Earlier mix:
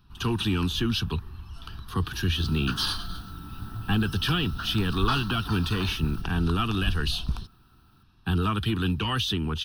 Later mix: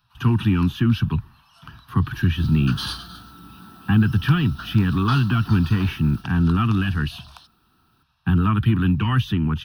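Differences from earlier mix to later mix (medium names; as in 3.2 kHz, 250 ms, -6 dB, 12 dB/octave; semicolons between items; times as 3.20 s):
speech: add graphic EQ 125/250/500/1000/2000/4000/8000 Hz +11/+7/-8/+4/+6/-9/-10 dB; first sound: add Chebyshev high-pass 530 Hz, order 8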